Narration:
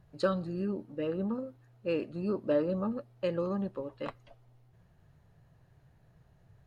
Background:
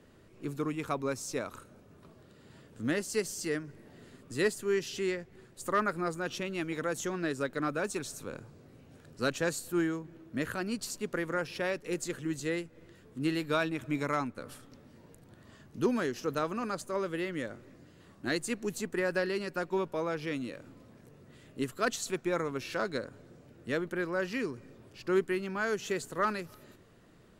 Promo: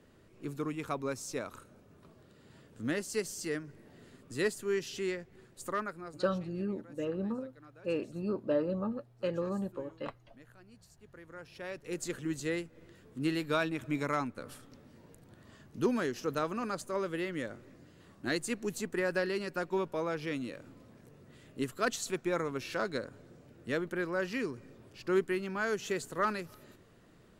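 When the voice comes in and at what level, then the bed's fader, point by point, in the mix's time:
6.00 s, -2.0 dB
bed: 5.62 s -2.5 dB
6.57 s -24 dB
10.97 s -24 dB
12.07 s -1 dB

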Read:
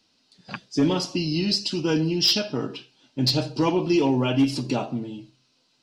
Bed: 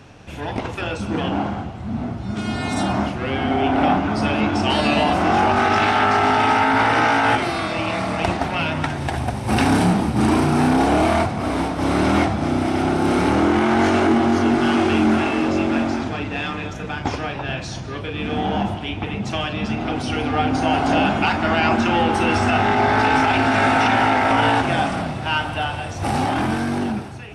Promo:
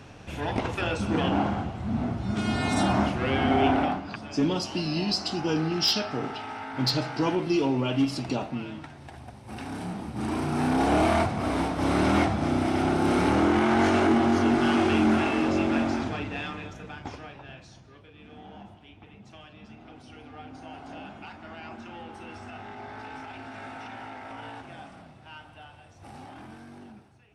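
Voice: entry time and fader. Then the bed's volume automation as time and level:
3.60 s, -4.0 dB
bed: 3.70 s -2.5 dB
4.14 s -20.5 dB
9.63 s -20.5 dB
10.96 s -5 dB
16.05 s -5 dB
18.10 s -24 dB

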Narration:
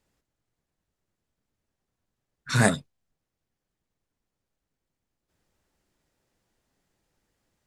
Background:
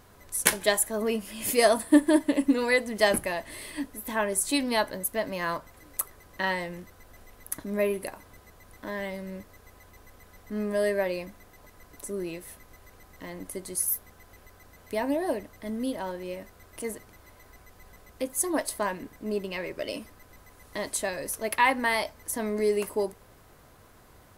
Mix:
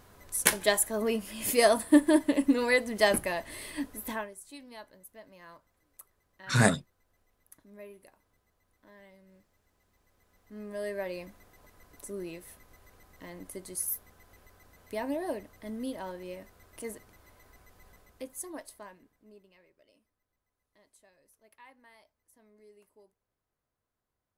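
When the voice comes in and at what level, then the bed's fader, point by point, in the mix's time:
4.00 s, -2.0 dB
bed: 4.11 s -1.5 dB
4.35 s -21.5 dB
9.77 s -21.5 dB
11.25 s -5.5 dB
17.90 s -5.5 dB
19.84 s -32.5 dB

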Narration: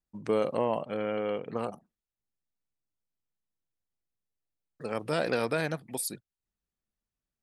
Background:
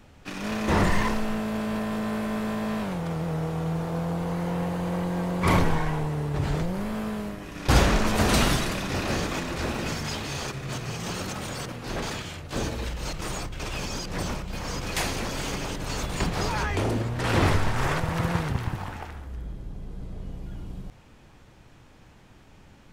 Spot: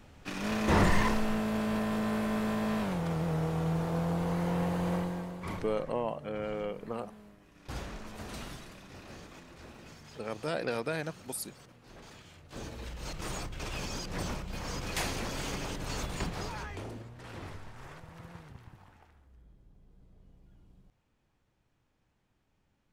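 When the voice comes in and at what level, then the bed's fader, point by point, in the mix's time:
5.35 s, -4.5 dB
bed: 4.94 s -2.5 dB
5.62 s -21 dB
11.98 s -21 dB
13.27 s -5.5 dB
16.02 s -5.5 dB
17.40 s -22.5 dB

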